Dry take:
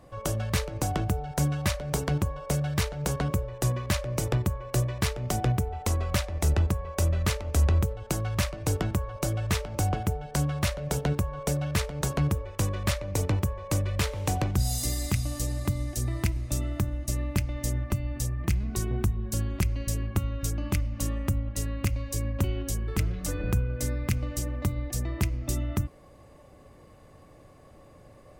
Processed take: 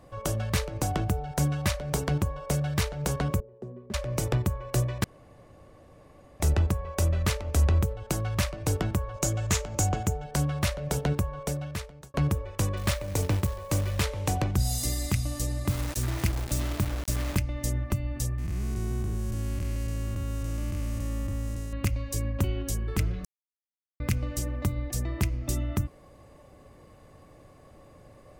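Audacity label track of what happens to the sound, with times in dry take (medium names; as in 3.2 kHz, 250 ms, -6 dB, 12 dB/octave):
3.400000	3.940000	two resonant band-passes 300 Hz, apart 0.77 oct
5.040000	6.400000	room tone
9.140000	10.240000	peaking EQ 6.9 kHz +12.5 dB 0.38 oct
11.230000	12.140000	fade out
12.770000	14.030000	short-mantissa float mantissa of 2-bit
15.690000	17.380000	word length cut 6-bit, dither none
18.380000	21.730000	spectral blur width 397 ms
23.250000	24.000000	mute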